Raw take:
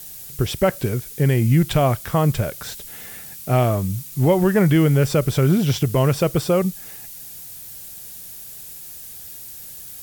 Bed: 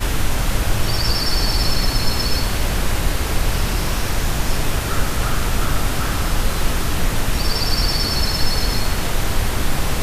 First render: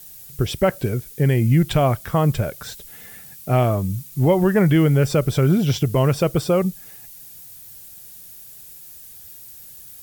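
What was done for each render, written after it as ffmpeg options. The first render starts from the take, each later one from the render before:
-af "afftdn=nr=6:nf=-38"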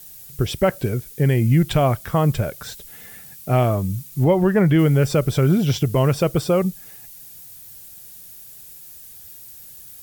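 -filter_complex "[0:a]asettb=1/sr,asplit=3[s0][s1][s2];[s0]atrim=end=4.244[s3];[s1]atrim=start=4.24:end=4.79,asetpts=PTS-STARTPTS,afade=t=in:d=0.004:c=qsin,afade=t=out:st=0.546:d=0.004:c=qsin,highshelf=f=4600:g=-7.5[s4];[s2]atrim=start=4.786[s5];[s3][s4]acrossfade=d=0.004:c1=hsin:c2=qsin[s6];[s6][s5]acrossfade=d=0.004:c1=qsin:c2=hsin"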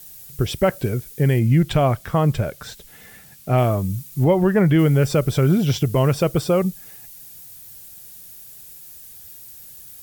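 -filter_complex "[0:a]asettb=1/sr,asplit=3[s0][s1][s2];[s0]atrim=end=1.394[s3];[s1]atrim=start=1.39:end=3.58,asetpts=PTS-STARTPTS,afade=t=in:d=0.004:c=qsin,afade=t=out:st=2.186:d=0.004:c=qsin,highshelf=f=7800:g=-7[s4];[s2]atrim=start=3.576[s5];[s3][s4]acrossfade=d=0.004:c1=hsin:c2=qsin[s6];[s6][s5]acrossfade=d=0.004:c1=qsin:c2=hsin"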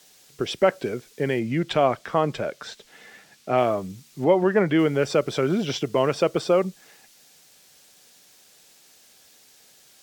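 -filter_complex "[0:a]acrossover=split=230 7000:gain=0.0794 1 0.1[s0][s1][s2];[s0][s1][s2]amix=inputs=3:normalize=0"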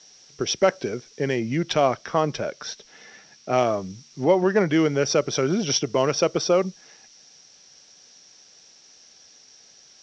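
-af "adynamicsmooth=sensitivity=1.5:basefreq=4400,lowpass=f=5700:t=q:w=13"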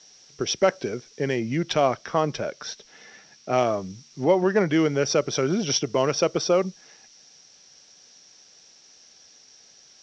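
-af "volume=0.891"

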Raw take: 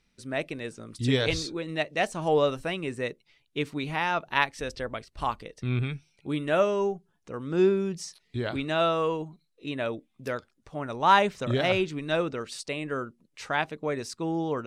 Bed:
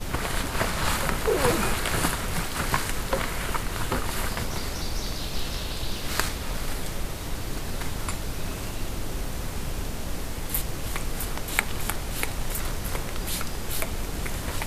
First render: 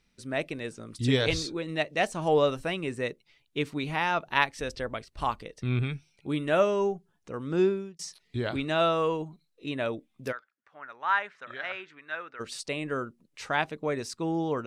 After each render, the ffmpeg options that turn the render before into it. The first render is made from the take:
-filter_complex "[0:a]asplit=3[s0][s1][s2];[s0]afade=t=out:st=10.31:d=0.02[s3];[s1]bandpass=f=1600:t=q:w=2.6,afade=t=in:st=10.31:d=0.02,afade=t=out:st=12.39:d=0.02[s4];[s2]afade=t=in:st=12.39:d=0.02[s5];[s3][s4][s5]amix=inputs=3:normalize=0,asplit=2[s6][s7];[s6]atrim=end=7.99,asetpts=PTS-STARTPTS,afade=t=out:st=7.54:d=0.45[s8];[s7]atrim=start=7.99,asetpts=PTS-STARTPTS,afade=t=in:d=0.004:c=hsin[s9];[s8][s9]concat=n=2:v=0:a=1"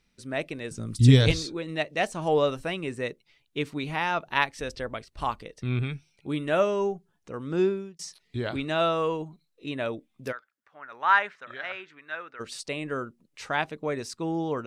-filter_complex "[0:a]asettb=1/sr,asplit=3[s0][s1][s2];[s0]atrim=end=0.714[s3];[s1]atrim=start=0.71:end=1.32,asetpts=PTS-STARTPTS,afade=t=in:d=0.004:c=qsin,afade=t=out:st=0.606:d=0.004:c=qsin,bass=f=250:g=14,treble=f=4000:g=8[s4];[s2]atrim=start=1.316[s5];[s3][s4]acrossfade=d=0.004:c1=hsin:c2=qsin[s6];[s6][s5]acrossfade=d=0.004:c1=qsin:c2=hsin,asplit=3[s7][s8][s9];[s7]afade=t=out:st=10.91:d=0.02[s10];[s8]acontrast=37,afade=t=in:st=10.91:d=0.02,afade=t=out:st=11.34:d=0.02[s11];[s9]afade=t=in:st=11.34:d=0.02[s12];[s10][s11][s12]amix=inputs=3:normalize=0"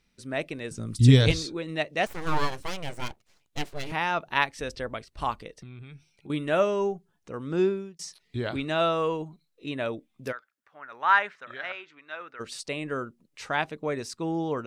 -filter_complex "[0:a]asettb=1/sr,asplit=3[s0][s1][s2];[s0]atrim=end=2.064[s3];[s1]atrim=start=2.06:end=3.92,asetpts=PTS-STARTPTS,afade=t=in:d=0.004:c=qsin,afade=t=out:st=1.856:d=0.004:c=qsin,aeval=exprs='abs(val(0))':c=same[s4];[s2]atrim=start=3.916[s5];[s3][s4]acrossfade=d=0.004:c1=hsin:c2=qsin[s6];[s6][s5]acrossfade=d=0.004:c1=qsin:c2=hsin,asettb=1/sr,asplit=3[s7][s8][s9];[s7]atrim=end=5.604[s10];[s8]atrim=start=5.6:end=6.3,asetpts=PTS-STARTPTS,afade=t=in:d=0.004:c=qsin,afade=t=out:st=0.696:d=0.004:c=qsin,acompressor=threshold=0.00794:ratio=5:attack=3.2:release=140:knee=1:detection=peak[s11];[s9]atrim=start=6.296[s12];[s10][s11]acrossfade=d=0.004:c1=hsin:c2=qsin[s13];[s13][s12]acrossfade=d=0.004:c1=qsin:c2=hsin,asettb=1/sr,asplit=3[s14][s15][s16];[s14]atrim=end=11.724[s17];[s15]atrim=start=11.72:end=12.21,asetpts=PTS-STARTPTS,afade=t=in:d=0.004:c=qsin,afade=t=out:st=0.486:d=0.004:c=qsin,highpass=160,equalizer=f=190:t=q:w=4:g=-7,equalizer=f=410:t=q:w=4:g=-4,equalizer=f=1700:t=q:w=4:g=-7,lowpass=f=7900:w=0.5412,lowpass=f=7900:w=1.3066[s18];[s16]atrim=start=12.206[s19];[s17][s18]acrossfade=d=0.004:c1=hsin:c2=qsin[s20];[s20][s19]acrossfade=d=0.004:c1=qsin:c2=hsin"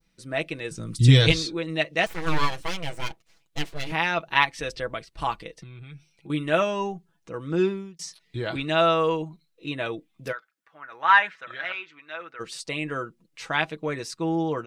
-af "aecho=1:1:6.1:0.56,adynamicequalizer=threshold=0.0141:dfrequency=2800:dqfactor=0.71:tfrequency=2800:tqfactor=0.71:attack=5:release=100:ratio=0.375:range=2.5:mode=boostabove:tftype=bell"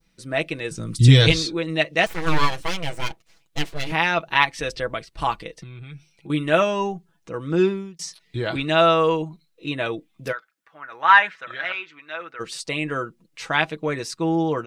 -af "volume=1.58,alimiter=limit=0.794:level=0:latency=1"

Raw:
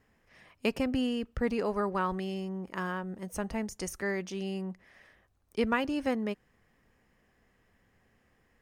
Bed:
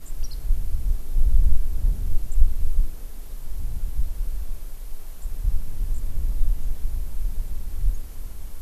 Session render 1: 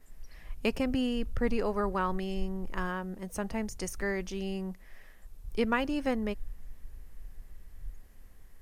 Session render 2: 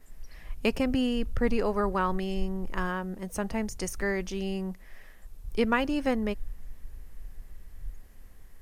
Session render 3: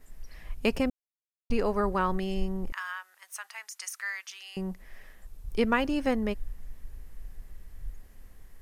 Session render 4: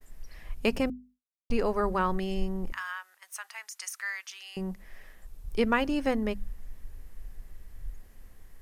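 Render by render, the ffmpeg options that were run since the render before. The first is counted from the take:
-filter_complex "[1:a]volume=0.106[s0];[0:a][s0]amix=inputs=2:normalize=0"
-af "volume=1.41"
-filter_complex "[0:a]asettb=1/sr,asplit=3[s0][s1][s2];[s0]atrim=end=2.724[s3];[s1]atrim=start=2.72:end=4.57,asetpts=PTS-STARTPTS,afade=t=in:d=0.004:c=qsin,afade=t=out:st=1.846:d=0.004:c=qsin,highpass=f=1200:w=0.5412,highpass=f=1200:w=1.3066[s4];[s2]atrim=start=4.566[s5];[s3][s4]acrossfade=d=0.004:c1=hsin:c2=qsin[s6];[s6][s5]acrossfade=d=0.004:c1=qsin:c2=hsin,asplit=3[s7][s8][s9];[s7]atrim=end=0.9,asetpts=PTS-STARTPTS,afade=t=out:st=0.896:d=0.004:c=hsin[s10];[s8]atrim=start=0.9:end=1.5,asetpts=PTS-STARTPTS,volume=0[s11];[s9]atrim=start=1.5,asetpts=PTS-STARTPTS,afade=t=in:d=0.004:c=hsin[s12];[s10][s11][s12]concat=n=3:v=0:a=1"
-af "bandreject=f=50:t=h:w=6,bandreject=f=100:t=h:w=6,bandreject=f=150:t=h:w=6,bandreject=f=200:t=h:w=6,bandreject=f=250:t=h:w=6,agate=range=0.0224:threshold=0.00224:ratio=3:detection=peak"

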